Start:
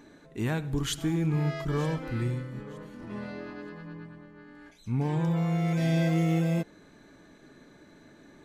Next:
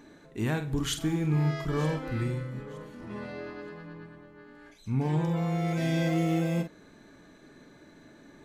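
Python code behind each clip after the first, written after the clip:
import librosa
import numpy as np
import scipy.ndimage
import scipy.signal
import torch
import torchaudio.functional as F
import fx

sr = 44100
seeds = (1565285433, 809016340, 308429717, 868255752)

y = fx.doubler(x, sr, ms=46.0, db=-9.0)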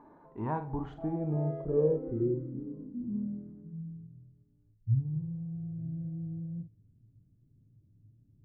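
y = fx.filter_sweep_lowpass(x, sr, from_hz=960.0, to_hz=110.0, start_s=0.56, end_s=4.43, q=7.3)
y = y * 10.0 ** (-6.5 / 20.0)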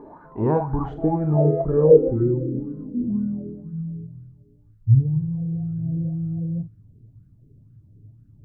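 y = fx.low_shelf(x, sr, hz=270.0, db=10.5)
y = fx.bell_lfo(y, sr, hz=2.0, low_hz=400.0, high_hz=1500.0, db=17)
y = y * 10.0 ** (3.5 / 20.0)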